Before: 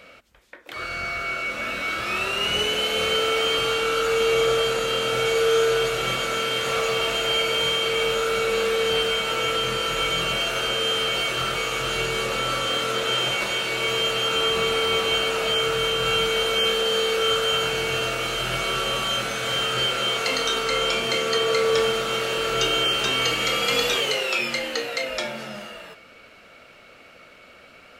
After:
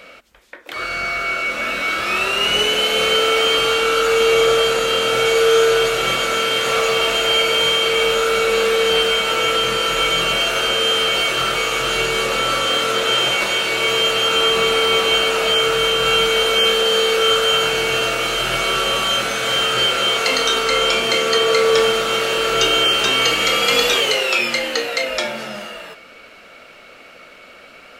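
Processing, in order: bell 92 Hz -8 dB 1.7 oct; gain +6.5 dB

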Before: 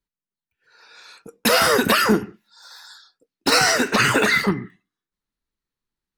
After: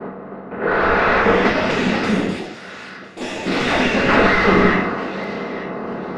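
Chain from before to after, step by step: per-bin compression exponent 0.4; low-pass opened by the level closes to 710 Hz, open at -12 dBFS; expander -42 dBFS; 1.47–4.09 passive tone stack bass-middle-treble 10-0-1; overdrive pedal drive 35 dB, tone 1100 Hz, clips at 0 dBFS; air absorption 180 m; thin delay 0.893 s, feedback 31%, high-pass 2100 Hz, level -11 dB; shoebox room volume 190 m³, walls furnished, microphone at 1.4 m; echoes that change speed 0.612 s, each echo +5 st, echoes 2, each echo -6 dB; gain -6 dB

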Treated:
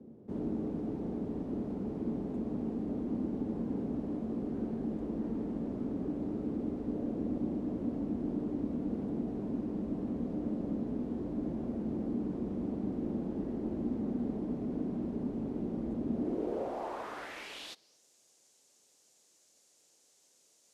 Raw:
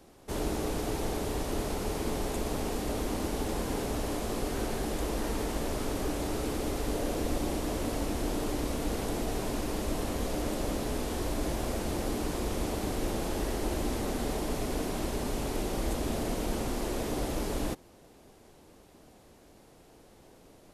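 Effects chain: band noise 76–550 Hz -52 dBFS; band-pass sweep 220 Hz -> 6800 Hz, 16.13–18.03; gain +4.5 dB

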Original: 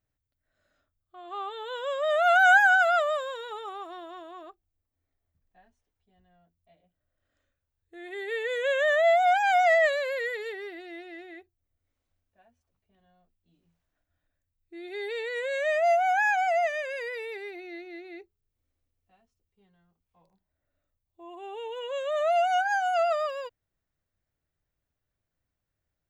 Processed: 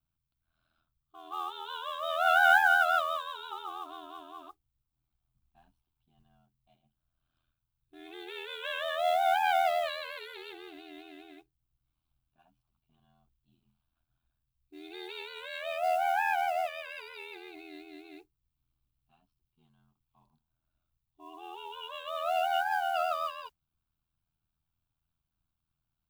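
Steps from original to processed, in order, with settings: ring modulator 41 Hz; fixed phaser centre 1900 Hz, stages 6; modulation noise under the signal 25 dB; gain +3 dB

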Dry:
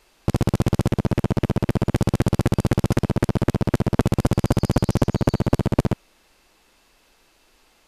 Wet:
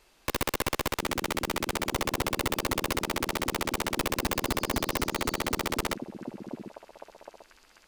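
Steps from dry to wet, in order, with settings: delay with a stepping band-pass 0.745 s, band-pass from 280 Hz, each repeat 1.4 oct, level -11.5 dB; wrapped overs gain 16 dB; gain -3.5 dB

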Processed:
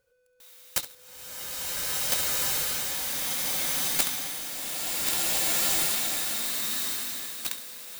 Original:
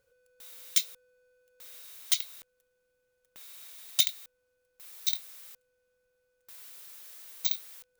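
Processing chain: self-modulated delay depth 0.5 ms; flutter echo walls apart 11.6 m, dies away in 0.28 s; bloom reverb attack 1.77 s, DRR -11 dB

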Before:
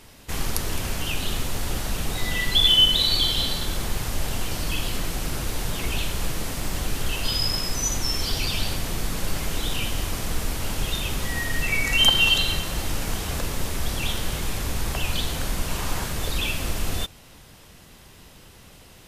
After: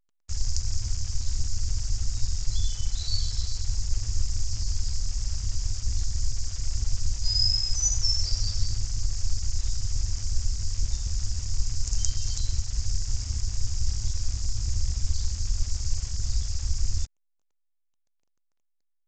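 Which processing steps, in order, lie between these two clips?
Chebyshev band-stop 110–4900 Hz, order 5; crossover distortion -41 dBFS; gain +3.5 dB; A-law 128 kbps 16000 Hz

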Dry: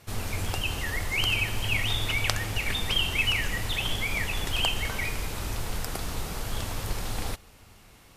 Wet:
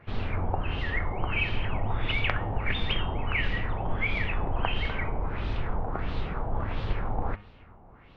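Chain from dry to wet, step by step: LFO low-pass sine 1.5 Hz 800–3900 Hz; tape spacing loss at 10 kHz 34 dB; de-hum 103.2 Hz, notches 38; gain +3 dB

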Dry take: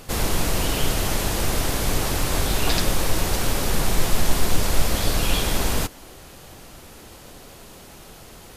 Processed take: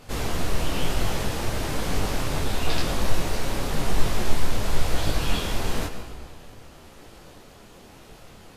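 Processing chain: high shelf 6800 Hz -9.5 dB; on a send at -8 dB: reverb RT60 1.8 s, pre-delay 76 ms; on the sum: detuned doubles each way 34 cents

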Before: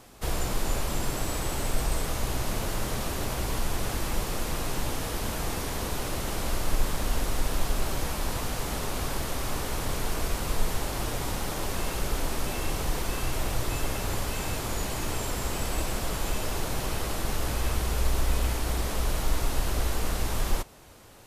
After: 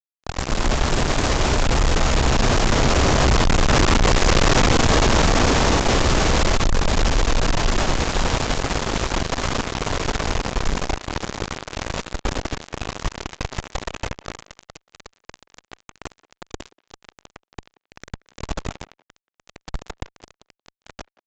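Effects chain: Doppler pass-by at 4.31, 14 m/s, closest 3.6 m; in parallel at -12 dB: pump 136 bpm, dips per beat 2, -7 dB, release 0.177 s; on the sum: high shelf 2900 Hz -4.5 dB; AGC gain up to 10 dB; on a send at -11 dB: reverb, pre-delay 3 ms; on the sum: fuzz box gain 47 dB, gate -42 dBFS; speakerphone echo 0.18 s, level -22 dB; downsampling 16000 Hz

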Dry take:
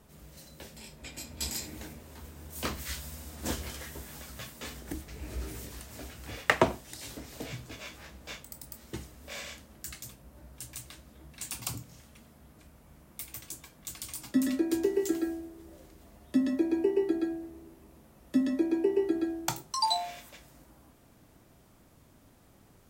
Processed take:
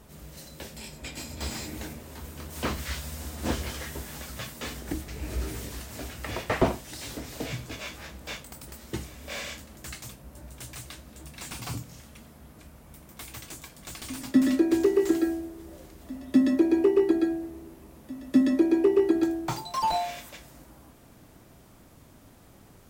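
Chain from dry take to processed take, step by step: pre-echo 0.252 s -19 dB; slew limiter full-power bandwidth 39 Hz; gain +6 dB

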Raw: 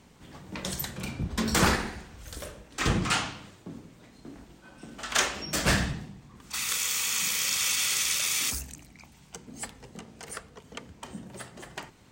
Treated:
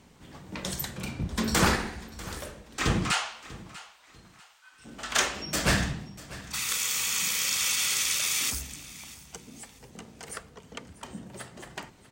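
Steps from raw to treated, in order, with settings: 3.11–4.84 HPF 530 Hz -> 1200 Hz 24 dB/oct; 9.36–9.99 compressor 3:1, threshold -45 dBFS, peak gain reduction 10 dB; feedback echo 0.643 s, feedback 29%, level -18 dB

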